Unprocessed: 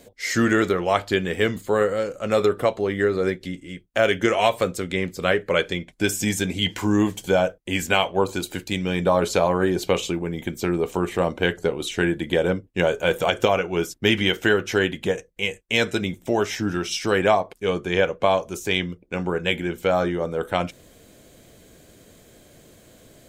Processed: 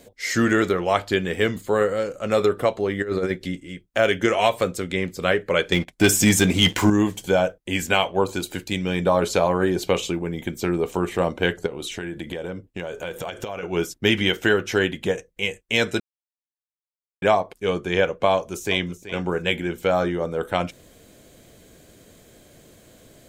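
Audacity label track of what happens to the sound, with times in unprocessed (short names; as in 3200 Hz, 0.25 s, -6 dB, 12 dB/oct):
3.020000	3.580000	negative-ratio compressor -23 dBFS, ratio -0.5
5.720000	6.900000	sample leveller passes 2
11.660000	13.630000	compressor, threshold -27 dBFS
16.000000	17.220000	mute
18.330000	18.990000	echo throw 0.38 s, feedback 25%, level -14 dB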